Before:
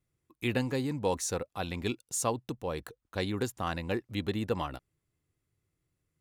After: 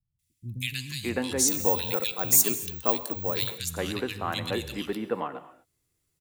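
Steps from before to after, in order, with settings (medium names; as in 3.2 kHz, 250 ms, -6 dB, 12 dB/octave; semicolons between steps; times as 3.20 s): treble shelf 2.5 kHz +10.5 dB; hum notches 50/100 Hz; three bands offset in time lows, highs, mids 190/610 ms, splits 170/2100 Hz; gated-style reverb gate 270 ms flat, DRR 12 dB; 1.48–3.58 s: careless resampling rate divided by 2×, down none, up zero stuff; trim +2 dB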